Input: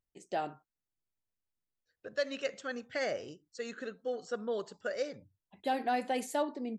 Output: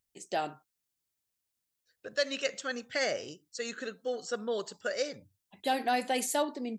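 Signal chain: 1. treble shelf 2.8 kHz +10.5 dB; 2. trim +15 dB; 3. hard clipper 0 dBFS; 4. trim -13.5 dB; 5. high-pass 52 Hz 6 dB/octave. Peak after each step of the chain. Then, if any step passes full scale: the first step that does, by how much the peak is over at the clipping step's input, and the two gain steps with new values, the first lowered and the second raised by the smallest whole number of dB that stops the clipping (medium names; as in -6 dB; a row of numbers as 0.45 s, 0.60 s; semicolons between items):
-18.0 dBFS, -3.0 dBFS, -3.0 dBFS, -16.5 dBFS, -16.5 dBFS; nothing clips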